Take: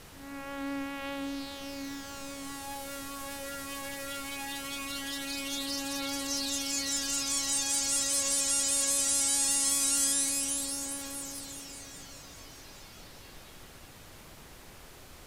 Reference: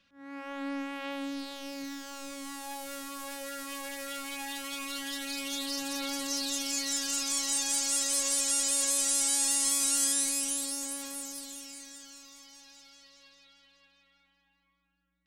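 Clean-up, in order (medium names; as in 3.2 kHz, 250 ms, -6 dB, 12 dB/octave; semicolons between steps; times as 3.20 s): noise print and reduce 15 dB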